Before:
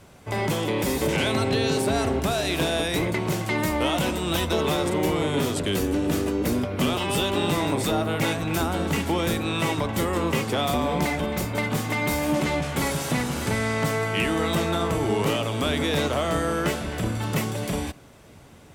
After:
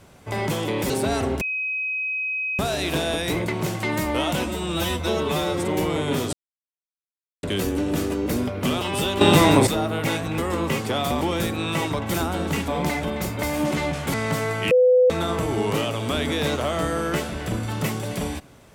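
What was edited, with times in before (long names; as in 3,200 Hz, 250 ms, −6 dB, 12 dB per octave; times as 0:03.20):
0:00.90–0:01.74: remove
0:02.25: insert tone 2,530 Hz −23.5 dBFS 1.18 s
0:04.10–0:04.90: time-stretch 1.5×
0:05.59: splice in silence 1.10 s
0:07.37–0:07.83: clip gain +9 dB
0:08.54–0:09.08: swap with 0:10.01–0:10.84
0:11.59–0:12.12: remove
0:12.83–0:13.66: remove
0:14.23–0:14.62: beep over 503 Hz −12 dBFS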